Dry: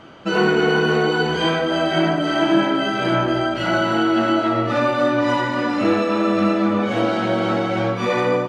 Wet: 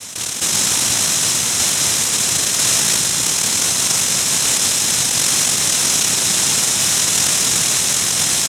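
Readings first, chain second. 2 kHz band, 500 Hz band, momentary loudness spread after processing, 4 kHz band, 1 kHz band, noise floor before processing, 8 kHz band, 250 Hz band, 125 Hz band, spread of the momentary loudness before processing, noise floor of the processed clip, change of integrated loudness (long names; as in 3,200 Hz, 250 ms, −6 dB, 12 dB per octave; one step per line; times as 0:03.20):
−1.5 dB, −14.0 dB, 1 LU, +11.0 dB, −7.5 dB, −24 dBFS, can't be measured, −13.0 dB, −4.5 dB, 3 LU, −22 dBFS, +5.5 dB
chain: multi-voice chorus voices 2, 0.32 Hz, delay 24 ms, depth 1.8 ms
spectral tilt −3 dB per octave
three-band delay without the direct sound highs, lows, mids 150/430 ms, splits 600/3,300 Hz
brickwall limiter −11.5 dBFS, peak gain reduction 5.5 dB
comb filter 3.5 ms, depth 80%
cochlear-implant simulation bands 1
bass and treble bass +9 dB, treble +12 dB
notch filter 4,600 Hz, Q 8.4
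envelope flattener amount 70%
level −10 dB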